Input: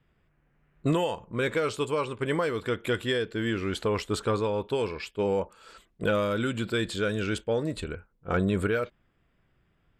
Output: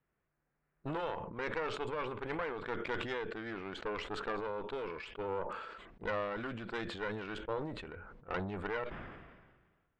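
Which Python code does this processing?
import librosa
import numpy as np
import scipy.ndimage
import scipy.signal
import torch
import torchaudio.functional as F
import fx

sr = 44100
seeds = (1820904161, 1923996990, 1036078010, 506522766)

y = scipy.signal.sosfilt(scipy.signal.butter(2, 1900.0, 'lowpass', fs=sr, output='sos'), x)
y = fx.low_shelf(y, sr, hz=270.0, db=-10.0)
y = fx.cheby_harmonics(y, sr, harmonics=(3, 8), levels_db=(-18, -20), full_scale_db=-9.5)
y = fx.sustainer(y, sr, db_per_s=39.0)
y = F.gain(torch.from_numpy(y), -5.0).numpy()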